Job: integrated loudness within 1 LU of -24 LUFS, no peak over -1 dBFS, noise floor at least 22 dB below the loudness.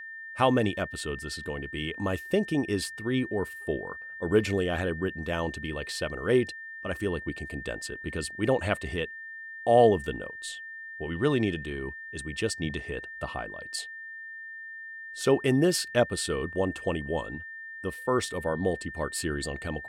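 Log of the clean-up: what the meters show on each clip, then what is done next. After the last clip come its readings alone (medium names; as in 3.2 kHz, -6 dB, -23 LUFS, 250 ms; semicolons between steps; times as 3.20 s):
steady tone 1.8 kHz; tone level -39 dBFS; loudness -29.5 LUFS; peak level -9.0 dBFS; loudness target -24.0 LUFS
-> band-stop 1.8 kHz, Q 30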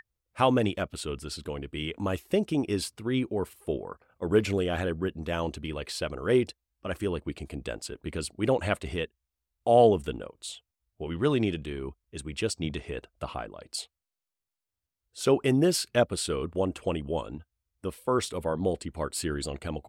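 steady tone not found; loudness -29.5 LUFS; peak level -8.5 dBFS; loudness target -24.0 LUFS
-> trim +5.5 dB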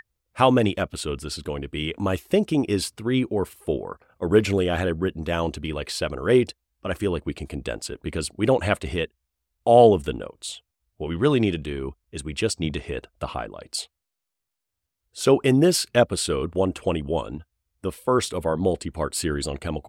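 loudness -24.0 LUFS; peak level -3.0 dBFS; noise floor -83 dBFS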